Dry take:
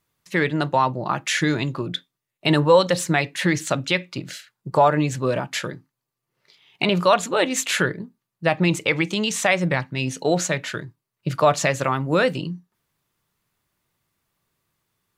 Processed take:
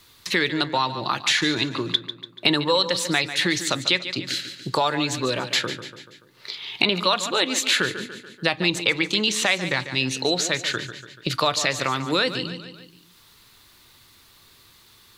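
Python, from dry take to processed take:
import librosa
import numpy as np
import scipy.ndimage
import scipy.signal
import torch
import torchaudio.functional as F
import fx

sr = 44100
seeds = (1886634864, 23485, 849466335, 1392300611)

y = fx.graphic_eq_15(x, sr, hz=(160, 630, 4000), db=(-9, -6, 11))
y = fx.echo_feedback(y, sr, ms=144, feedback_pct=36, wet_db=-13.0)
y = fx.band_squash(y, sr, depth_pct=70)
y = y * librosa.db_to_amplitude(-1.5)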